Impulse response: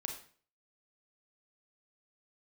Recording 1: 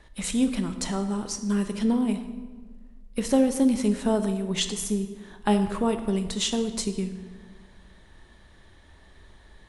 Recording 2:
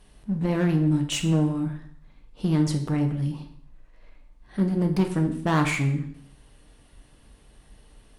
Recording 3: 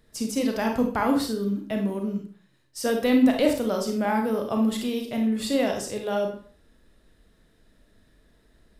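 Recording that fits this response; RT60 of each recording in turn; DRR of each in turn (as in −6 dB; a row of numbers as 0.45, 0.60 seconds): 3; 1.5, 0.65, 0.45 seconds; 7.5, 4.0, 2.5 decibels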